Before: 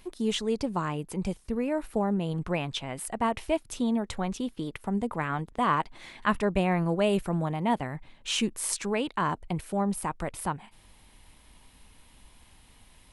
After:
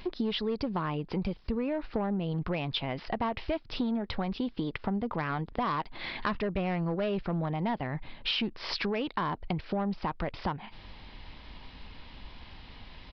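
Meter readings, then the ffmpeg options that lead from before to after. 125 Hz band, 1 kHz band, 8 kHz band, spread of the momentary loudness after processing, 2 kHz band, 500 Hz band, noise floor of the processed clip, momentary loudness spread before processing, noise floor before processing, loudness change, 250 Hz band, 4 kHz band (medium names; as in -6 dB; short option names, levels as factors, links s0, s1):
-2.0 dB, -4.0 dB, under -25 dB, 18 LU, -2.5 dB, -3.5 dB, -51 dBFS, 8 LU, -57 dBFS, -3.0 dB, -2.5 dB, 0.0 dB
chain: -af "aresample=11025,asoftclip=type=tanh:threshold=0.0841,aresample=44100,acompressor=threshold=0.0126:ratio=6,volume=2.82"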